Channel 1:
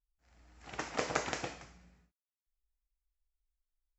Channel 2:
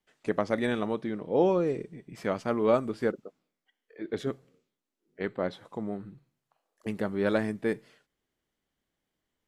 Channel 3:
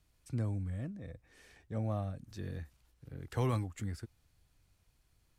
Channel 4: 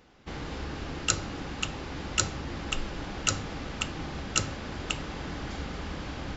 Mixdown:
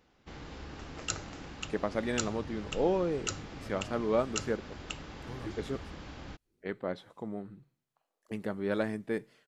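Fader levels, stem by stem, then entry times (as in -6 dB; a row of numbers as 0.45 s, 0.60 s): -14.5 dB, -4.5 dB, -13.0 dB, -8.5 dB; 0.00 s, 1.45 s, 1.90 s, 0.00 s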